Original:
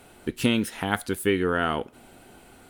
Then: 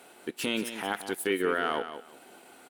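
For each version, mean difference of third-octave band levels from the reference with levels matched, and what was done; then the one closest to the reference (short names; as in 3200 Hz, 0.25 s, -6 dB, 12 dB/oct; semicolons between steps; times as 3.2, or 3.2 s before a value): 5.5 dB: HPF 330 Hz 12 dB/oct; limiter -15 dBFS, peak gain reduction 9 dB; transient shaper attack -3 dB, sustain -7 dB; on a send: feedback echo 0.179 s, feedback 20%, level -10.5 dB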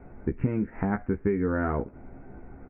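10.0 dB: steep low-pass 2300 Hz 72 dB/oct; tilt -3.5 dB/oct; doubler 15 ms -5 dB; compressor 6:1, threshold -19 dBFS, peak gain reduction 10 dB; gain -3 dB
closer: first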